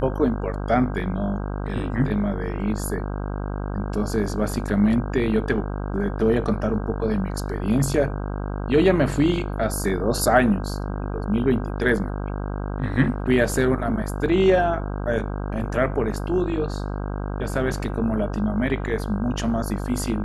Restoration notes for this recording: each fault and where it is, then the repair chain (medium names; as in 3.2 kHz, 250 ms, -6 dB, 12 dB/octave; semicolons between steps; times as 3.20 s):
buzz 50 Hz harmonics 32 -28 dBFS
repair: de-hum 50 Hz, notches 32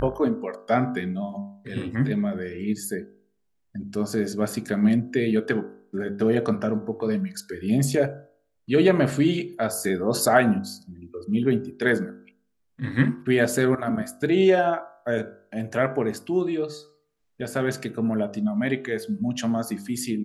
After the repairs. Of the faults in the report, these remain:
nothing left